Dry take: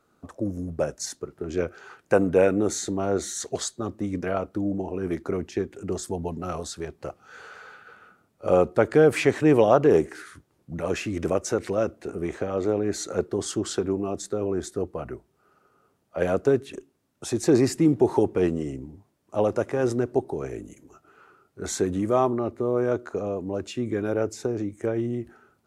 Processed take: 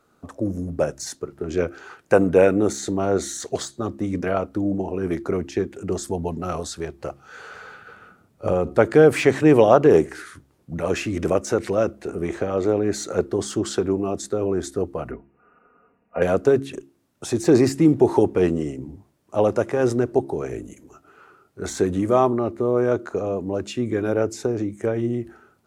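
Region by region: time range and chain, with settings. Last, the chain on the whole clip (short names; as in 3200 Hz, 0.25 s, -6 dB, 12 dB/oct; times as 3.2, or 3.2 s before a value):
7.48–8.73 low shelf 220 Hz +8.5 dB + compressor 5:1, threshold -20 dBFS
15.11–16.22 brick-wall FIR low-pass 2900 Hz + comb 4.2 ms, depth 68%
whole clip: de-hum 68.25 Hz, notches 5; de-esser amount 65%; gain +4 dB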